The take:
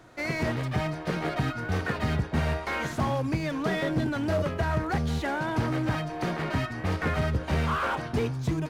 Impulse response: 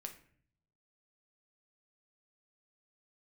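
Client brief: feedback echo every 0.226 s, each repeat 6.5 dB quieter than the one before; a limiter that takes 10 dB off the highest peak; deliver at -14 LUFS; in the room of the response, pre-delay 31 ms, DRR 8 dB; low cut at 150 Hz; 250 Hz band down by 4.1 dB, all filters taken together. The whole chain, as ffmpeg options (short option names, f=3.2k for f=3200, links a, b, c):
-filter_complex "[0:a]highpass=150,equalizer=f=250:t=o:g=-4.5,alimiter=level_in=2.5dB:limit=-24dB:level=0:latency=1,volume=-2.5dB,aecho=1:1:226|452|678|904|1130|1356:0.473|0.222|0.105|0.0491|0.0231|0.0109,asplit=2[a][b];[1:a]atrim=start_sample=2205,adelay=31[c];[b][c]afir=irnorm=-1:irlink=0,volume=-4.5dB[d];[a][d]amix=inputs=2:normalize=0,volume=19.5dB"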